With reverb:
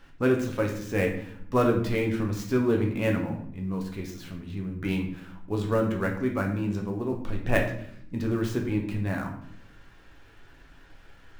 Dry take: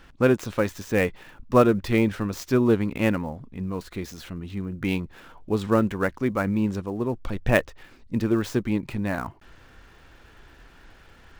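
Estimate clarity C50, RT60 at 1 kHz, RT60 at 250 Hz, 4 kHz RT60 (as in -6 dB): 7.0 dB, 0.60 s, 1.0 s, 0.50 s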